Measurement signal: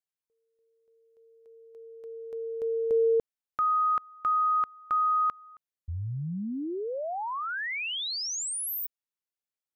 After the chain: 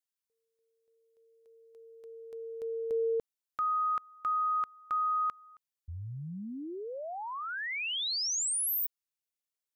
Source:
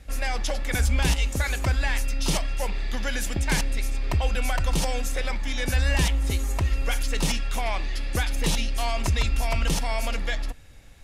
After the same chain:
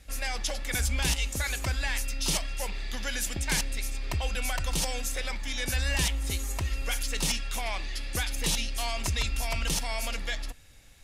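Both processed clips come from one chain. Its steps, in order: treble shelf 2.2 kHz +9 dB; trim -7 dB

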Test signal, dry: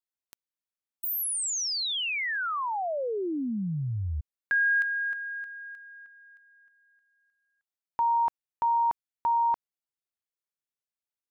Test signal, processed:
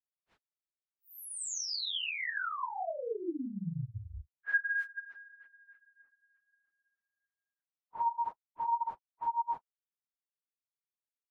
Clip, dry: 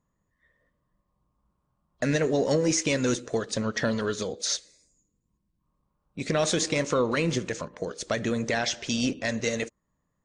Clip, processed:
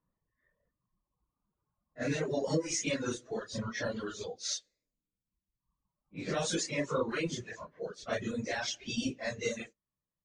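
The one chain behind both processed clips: phase randomisation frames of 100 ms; level-controlled noise filter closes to 2.1 kHz, open at -22.5 dBFS; reverb removal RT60 1.9 s; trim -6 dB

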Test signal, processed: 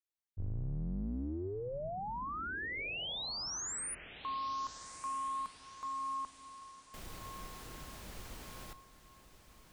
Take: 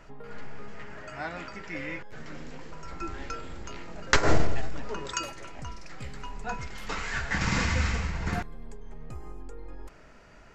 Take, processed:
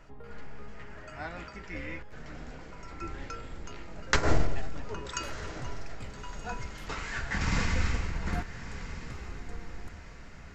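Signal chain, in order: octave divider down 2 oct, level +2 dB; echo that smears into a reverb 1265 ms, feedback 45%, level -12.5 dB; trim -4 dB

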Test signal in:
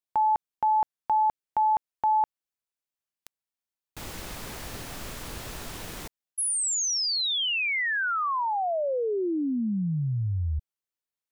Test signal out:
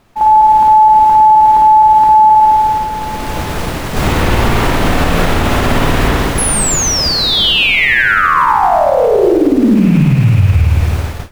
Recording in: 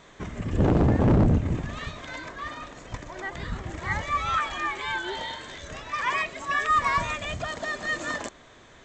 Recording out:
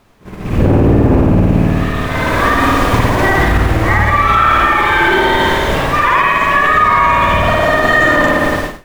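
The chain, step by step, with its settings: rattle on loud lows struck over -31 dBFS, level -32 dBFS; spring tank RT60 1.8 s, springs 53 ms, chirp 35 ms, DRR -7 dB; added noise pink -37 dBFS; level rider gain up to 15.5 dB; treble shelf 3.4 kHz -11.5 dB; expander -20 dBFS, range -21 dB; in parallel at -1 dB: compression, threshold -18 dBFS; on the sum: loudness maximiser +4 dB; trim -1 dB

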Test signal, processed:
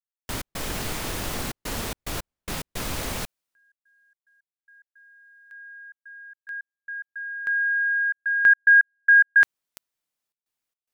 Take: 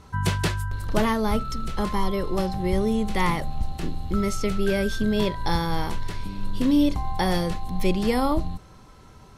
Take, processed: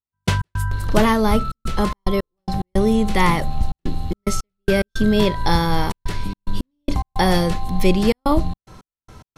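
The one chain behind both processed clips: trance gate "..x.xxxxxxx.xx.x" 109 bpm -60 dB; trim +6.5 dB

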